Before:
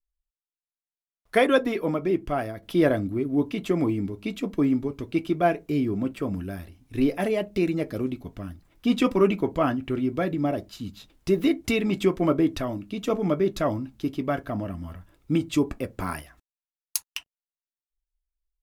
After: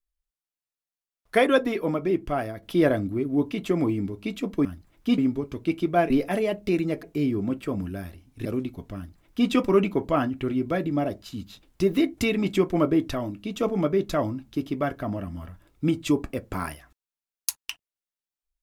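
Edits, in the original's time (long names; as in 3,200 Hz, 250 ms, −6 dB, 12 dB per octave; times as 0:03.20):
0:06.99–0:07.92: move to 0:05.57
0:08.43–0:08.96: duplicate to 0:04.65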